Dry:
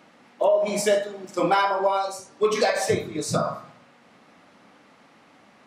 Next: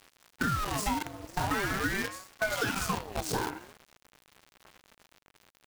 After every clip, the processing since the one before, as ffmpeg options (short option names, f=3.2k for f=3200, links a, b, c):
-af "acrusher=bits=5:dc=4:mix=0:aa=0.000001,acompressor=threshold=-25dB:ratio=4,aeval=exprs='val(0)*sin(2*PI*700*n/s+700*0.6/0.44*sin(2*PI*0.44*n/s))':c=same"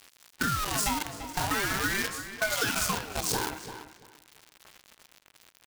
-filter_complex "[0:a]highshelf=f=2.3k:g=9,areverse,acompressor=mode=upward:threshold=-50dB:ratio=2.5,areverse,asplit=2[a][b];[b]adelay=340,lowpass=f=3.5k:p=1,volume=-11dB,asplit=2[c][d];[d]adelay=340,lowpass=f=3.5k:p=1,volume=0.2,asplit=2[e][f];[f]adelay=340,lowpass=f=3.5k:p=1,volume=0.2[g];[a][c][e][g]amix=inputs=4:normalize=0,volume=-1dB"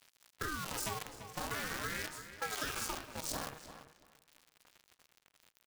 -af "aeval=exprs='val(0)*sin(2*PI*160*n/s)':c=same,volume=-7.5dB"